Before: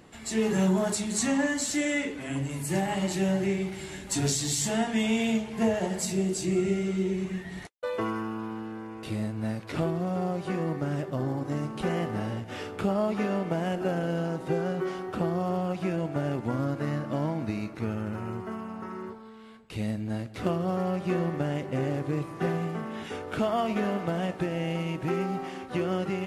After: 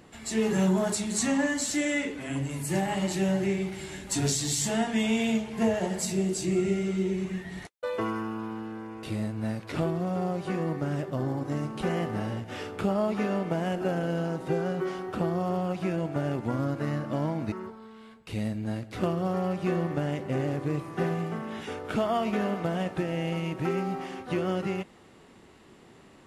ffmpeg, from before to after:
ffmpeg -i in.wav -filter_complex "[0:a]asplit=2[link_01][link_02];[link_01]atrim=end=17.522[link_03];[link_02]atrim=start=18.948[link_04];[link_03][link_04]acrossfade=duration=0.004:curve1=hsin:curve2=hsin" out.wav

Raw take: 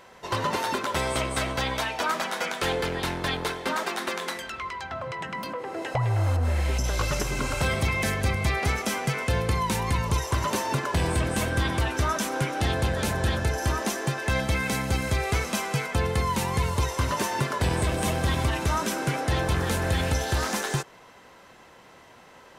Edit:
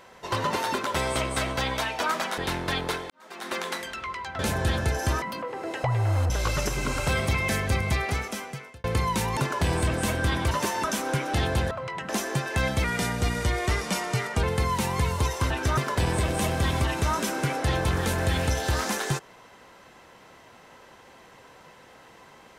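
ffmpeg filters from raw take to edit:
ffmpeg -i in.wav -filter_complex "[0:a]asplit=16[link_01][link_02][link_03][link_04][link_05][link_06][link_07][link_08][link_09][link_10][link_11][link_12][link_13][link_14][link_15][link_16];[link_01]atrim=end=2.382[link_17];[link_02]atrim=start=2.938:end=3.66,asetpts=PTS-STARTPTS,afade=type=out:start_time=0.718:duration=0.004:curve=hsin[link_18];[link_03]atrim=start=3.66:end=4.952,asetpts=PTS-STARTPTS,afade=type=in:duration=0.46:curve=qua[link_19];[link_04]atrim=start=12.978:end=13.812[link_20];[link_05]atrim=start=5.328:end=6.412[link_21];[link_06]atrim=start=6.838:end=9.38,asetpts=PTS-STARTPTS,afade=type=out:start_time=1.582:duration=0.96[link_22];[link_07]atrim=start=9.38:end=9.912,asetpts=PTS-STARTPTS,afade=type=in:duration=0.004:curve=hsin[link_23];[link_08]atrim=start=10.698:end=11.842[link_24];[link_09]atrim=start=17.078:end=17.412[link_25];[link_10]atrim=start=12.108:end=12.982[link_26];[link_11]atrim=start=4.948:end=5.332[link_27];[link_12]atrim=start=13.808:end=14.564[link_28];[link_13]atrim=start=14.56:end=16.01,asetpts=PTS-STARTPTS,asetrate=40131,aresample=44100,atrim=end_sample=70269,asetpts=PTS-STARTPTS[link_29];[link_14]atrim=start=16.006:end=17.082[link_30];[link_15]atrim=start=11.838:end=12.112[link_31];[link_16]atrim=start=17.408[link_32];[link_18][link_19]concat=n=2:v=0:a=1[link_33];[link_17][link_33]acrossfade=duration=0.004:curve1=hsin:curve2=hsin[link_34];[link_34][link_20]acrossfade=duration=0.004:curve1=hsin:curve2=hsin[link_35];[link_35][link_21]acrossfade=duration=0.004:curve1=hsin:curve2=hsin[link_36];[link_22][link_23]concat=n=2:v=0:a=1[link_37];[link_36][link_37]acrossfade=duration=0.004:curve1=hsin:curve2=hsin[link_38];[link_38][link_24]acrossfade=duration=0.004:curve1=hsin:curve2=hsin[link_39];[link_39][link_25]acrossfade=duration=0.004:curve1=hsin:curve2=hsin[link_40];[link_40][link_26]acrossfade=duration=0.004:curve1=hsin:curve2=hsin[link_41];[link_41][link_27]acrossfade=duration=0.004:curve1=hsin:curve2=hsin[link_42];[link_42][link_28]acrossfade=duration=0.004:curve1=hsin:curve2=hsin[link_43];[link_43][link_29]acrossfade=duration=0.004:curve1=hsin:curve2=hsin[link_44];[link_44][link_30]acrossfade=duration=0.004:curve1=hsin:curve2=hsin[link_45];[link_45][link_31]acrossfade=duration=0.004:curve1=hsin:curve2=hsin[link_46];[link_46][link_32]acrossfade=duration=0.004:curve1=hsin:curve2=hsin" out.wav

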